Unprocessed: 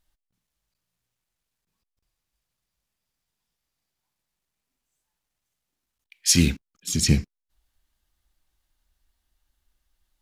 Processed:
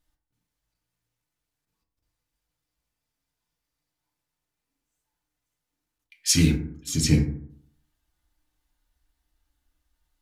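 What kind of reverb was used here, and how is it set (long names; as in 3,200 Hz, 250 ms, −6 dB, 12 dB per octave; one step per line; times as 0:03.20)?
feedback delay network reverb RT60 0.62 s, low-frequency decay 1.1×, high-frequency decay 0.35×, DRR −1 dB
level −4 dB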